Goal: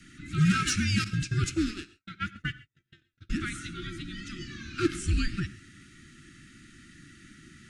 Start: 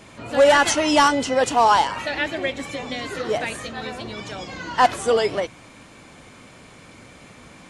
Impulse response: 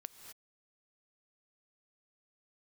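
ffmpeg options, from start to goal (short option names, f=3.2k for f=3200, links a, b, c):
-filter_complex "[0:a]afreqshift=-400,asoftclip=type=tanh:threshold=-9.5dB,asuperstop=centerf=680:order=20:qfactor=0.77,asettb=1/sr,asplit=3[a][b][c];[a]atrim=end=1.044[d];[b]atrim=start=1.04:end=3.3,asetpts=PTS-STARTPTS,afade=t=in:d=0.004:c=qsin,afade=t=out:st=2.256:d=0.004:c=qsin,agate=range=-58dB:threshold=-24dB:ratio=16:detection=peak[e];[c]atrim=start=3.296[f];[d][e]acrossfade=d=0.004:c1=hsin:c2=qsin[g];[g][f]acrossfade=d=0.004:c1=qsin:c2=hsin[h];[1:a]atrim=start_sample=2205,atrim=end_sample=6174[i];[h][i]afir=irnorm=-1:irlink=0"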